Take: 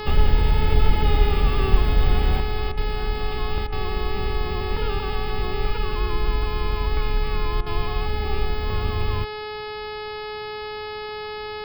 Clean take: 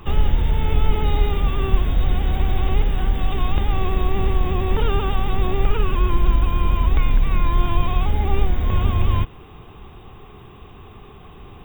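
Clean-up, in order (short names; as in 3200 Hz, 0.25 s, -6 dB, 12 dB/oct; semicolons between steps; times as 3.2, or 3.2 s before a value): de-hum 424.7 Hz, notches 12; interpolate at 2.72/3.67/7.61, 52 ms; gain correction +6.5 dB, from 2.4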